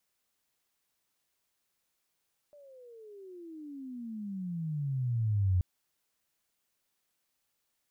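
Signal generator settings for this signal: gliding synth tone sine, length 3.08 s, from 595 Hz, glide -33 st, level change +29 dB, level -23 dB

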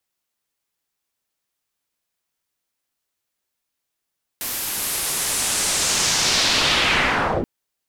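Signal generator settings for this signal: swept filtered noise white, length 3.03 s lowpass, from 14000 Hz, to 260 Hz, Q 1.6, linear, gain ramp +18 dB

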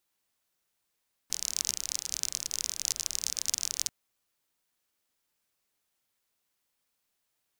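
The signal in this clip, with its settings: rain from filtered ticks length 2.59 s, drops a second 37, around 6000 Hz, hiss -20.5 dB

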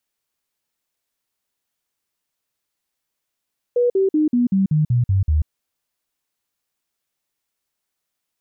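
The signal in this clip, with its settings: stepped sine 486 Hz down, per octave 3, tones 9, 0.14 s, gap 0.05 s -13.5 dBFS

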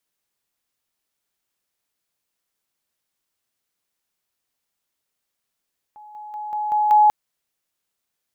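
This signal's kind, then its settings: level ladder 844 Hz -40 dBFS, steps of 6 dB, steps 6, 0.19 s 0.00 s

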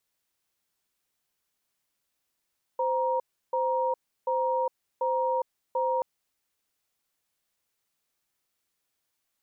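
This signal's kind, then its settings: cadence 518 Hz, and 942 Hz, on 0.41 s, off 0.33 s, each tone -26.5 dBFS 3.23 s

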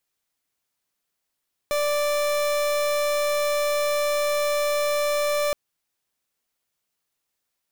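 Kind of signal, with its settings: pulse 587 Hz, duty 38% -23 dBFS 3.82 s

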